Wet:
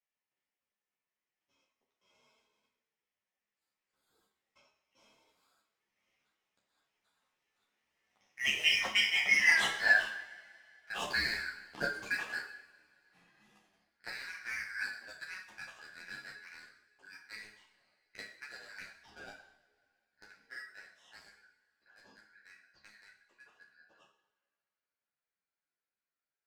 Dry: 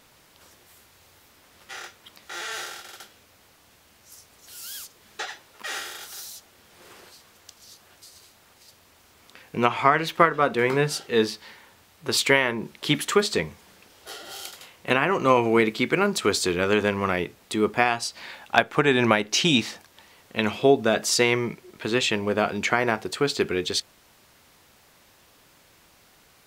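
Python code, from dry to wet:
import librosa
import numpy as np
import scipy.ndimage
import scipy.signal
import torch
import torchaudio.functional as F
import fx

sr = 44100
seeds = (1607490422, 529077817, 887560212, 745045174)

p1 = fx.band_shuffle(x, sr, order='3142')
p2 = fx.doppler_pass(p1, sr, speed_mps=42, closest_m=6.8, pass_at_s=9.57)
p3 = fx.lowpass(p2, sr, hz=1600.0, slope=6)
p4 = fx.low_shelf(p3, sr, hz=140.0, db=-9.5)
p5 = fx.leveller(p4, sr, passes=2)
p6 = fx.rider(p5, sr, range_db=5, speed_s=0.5)
p7 = p6 + fx.room_flutter(p6, sr, wall_m=4.9, rt60_s=0.25, dry=0)
p8 = fx.rev_double_slope(p7, sr, seeds[0], early_s=0.79, late_s=2.8, knee_db=-18, drr_db=5.5)
p9 = fx.ensemble(p8, sr)
y = p9 * librosa.db_to_amplitude(3.0)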